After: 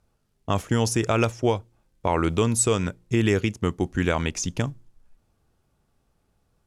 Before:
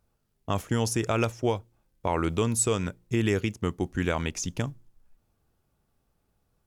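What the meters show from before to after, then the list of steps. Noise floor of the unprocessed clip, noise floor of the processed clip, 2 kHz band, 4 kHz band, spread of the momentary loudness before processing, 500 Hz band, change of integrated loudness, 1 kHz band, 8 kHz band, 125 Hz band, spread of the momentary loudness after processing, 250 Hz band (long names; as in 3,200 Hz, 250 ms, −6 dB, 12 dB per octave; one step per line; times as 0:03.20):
−74 dBFS, −70 dBFS, +4.0 dB, +4.0 dB, 8 LU, +4.0 dB, +4.0 dB, +4.0 dB, +3.5 dB, +4.0 dB, 8 LU, +4.0 dB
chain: low-pass filter 11,000 Hz 12 dB per octave
level +4 dB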